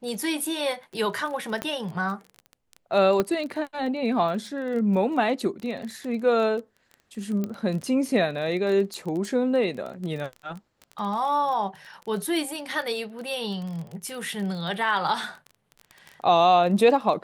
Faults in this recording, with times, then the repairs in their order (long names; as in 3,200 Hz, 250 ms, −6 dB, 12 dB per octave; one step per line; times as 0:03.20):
surface crackle 22 per second −31 dBFS
0:01.62: click −14 dBFS
0:03.20: click −10 dBFS
0:07.44: click −17 dBFS
0:08.94: click −22 dBFS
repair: click removal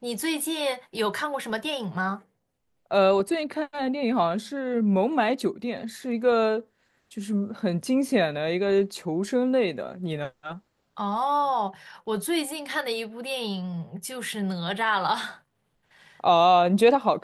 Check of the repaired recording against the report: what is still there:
0:03.20: click